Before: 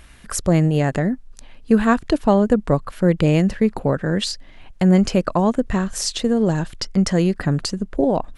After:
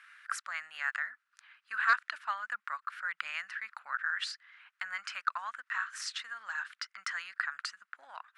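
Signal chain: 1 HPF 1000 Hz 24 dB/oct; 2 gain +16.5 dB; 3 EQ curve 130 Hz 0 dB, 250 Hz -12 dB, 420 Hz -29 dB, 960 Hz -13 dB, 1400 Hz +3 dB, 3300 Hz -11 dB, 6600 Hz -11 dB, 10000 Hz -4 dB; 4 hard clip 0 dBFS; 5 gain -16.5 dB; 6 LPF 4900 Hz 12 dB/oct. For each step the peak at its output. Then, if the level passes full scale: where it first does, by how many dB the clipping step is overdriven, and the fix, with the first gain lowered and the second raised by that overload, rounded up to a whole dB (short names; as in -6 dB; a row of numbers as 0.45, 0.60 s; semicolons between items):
-9.0, +7.5, +5.0, 0.0, -16.5, -16.0 dBFS; step 2, 5.0 dB; step 2 +11.5 dB, step 5 -11.5 dB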